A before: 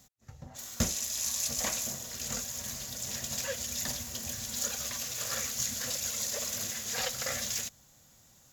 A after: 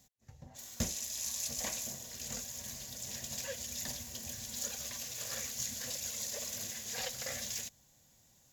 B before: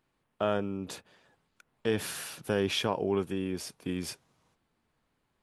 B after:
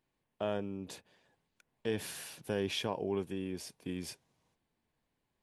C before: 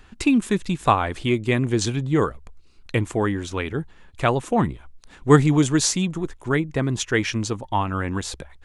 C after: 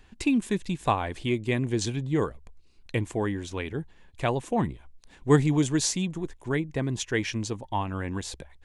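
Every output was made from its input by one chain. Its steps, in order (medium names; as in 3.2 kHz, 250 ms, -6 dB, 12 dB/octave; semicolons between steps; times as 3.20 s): peaking EQ 1.3 kHz -8.5 dB 0.31 oct; trim -5.5 dB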